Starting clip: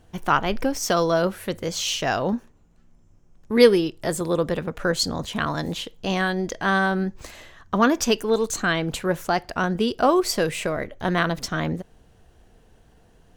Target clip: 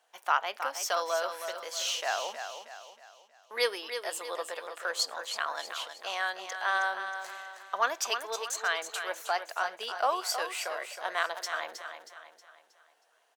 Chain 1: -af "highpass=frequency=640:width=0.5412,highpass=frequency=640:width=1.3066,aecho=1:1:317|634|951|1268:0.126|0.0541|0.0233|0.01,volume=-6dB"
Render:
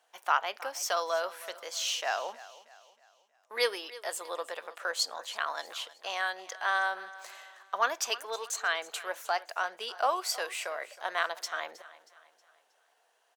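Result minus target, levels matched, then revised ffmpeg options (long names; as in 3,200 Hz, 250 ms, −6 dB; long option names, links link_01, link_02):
echo-to-direct −9.5 dB
-af "highpass=frequency=640:width=0.5412,highpass=frequency=640:width=1.3066,aecho=1:1:317|634|951|1268|1585:0.376|0.162|0.0695|0.0299|0.0128,volume=-6dB"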